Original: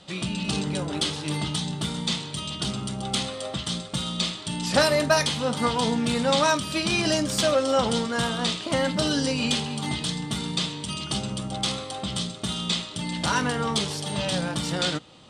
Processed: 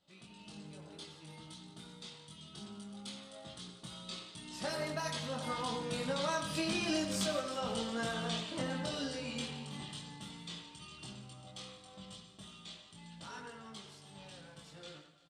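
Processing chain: Doppler pass-by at 6.98 s, 9 m/s, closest 4.4 m; compression 6:1, threshold -31 dBFS, peak gain reduction 11.5 dB; on a send: feedback delay 173 ms, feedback 59%, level -15 dB; on the sum: chorus voices 4, 0.14 Hz, delay 22 ms, depth 3.5 ms; speakerphone echo 90 ms, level -6 dB; trim +1 dB

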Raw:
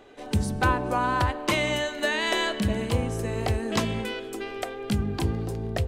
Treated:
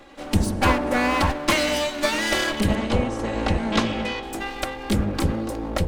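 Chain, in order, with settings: comb filter that takes the minimum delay 3.6 ms; 2.75–4.23 s: low-pass 5.4 kHz 12 dB/octave; trim +6 dB

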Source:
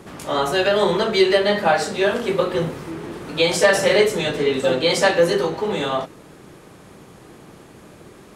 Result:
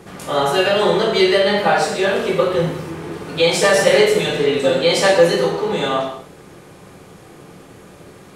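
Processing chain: gated-style reverb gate 250 ms falling, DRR 0 dB

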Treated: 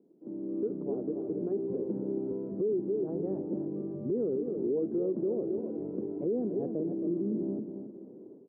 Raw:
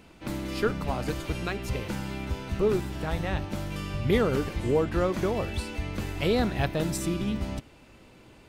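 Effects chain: high-pass 190 Hz 24 dB/octave; level rider gain up to 14 dB; four-pole ladder low-pass 450 Hz, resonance 55%; feedback delay 273 ms, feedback 28%, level -9.5 dB; in parallel at -2 dB: compression, threshold -30 dBFS, peak gain reduction 17.5 dB; on the sum: peak limiter -16.5 dBFS, peak gain reduction 10.5 dB; trim -7 dB

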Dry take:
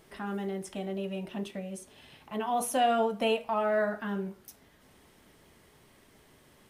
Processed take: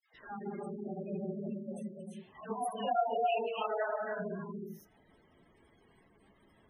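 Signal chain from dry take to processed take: phase randomisation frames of 50 ms; 2.54–4.06 s: frequency weighting A; gated-style reverb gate 350 ms rising, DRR 1.5 dB; spectral gate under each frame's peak -15 dB strong; phase dispersion lows, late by 144 ms, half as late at 1 kHz; trim -6 dB

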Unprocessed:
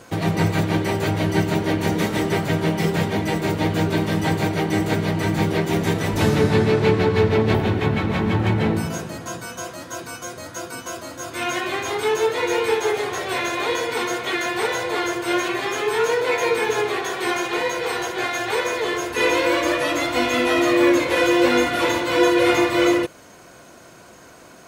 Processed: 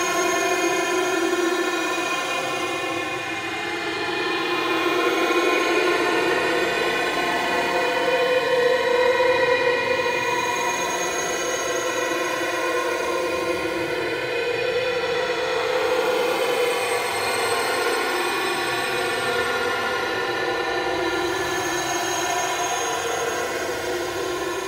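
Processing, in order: hum notches 50/100/150 Hz; Paulstretch 34×, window 0.05 s, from 17.39 s; trim +1.5 dB

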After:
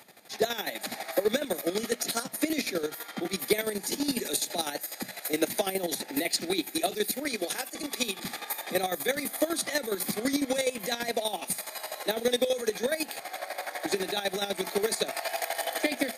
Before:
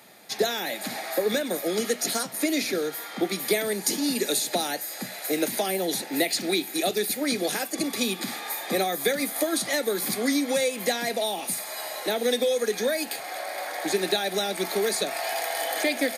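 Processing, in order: 7.25–8.19 s: high-pass 370 Hz 6 dB/octave; square tremolo 12 Hz, depth 65%, duty 35%

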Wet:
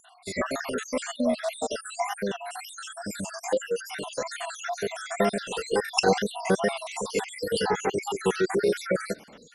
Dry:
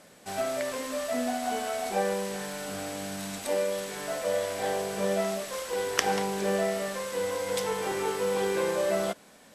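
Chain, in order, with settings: random holes in the spectrogram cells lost 68%; formant shift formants -2 st; wow and flutter 79 cents; trim +7.5 dB

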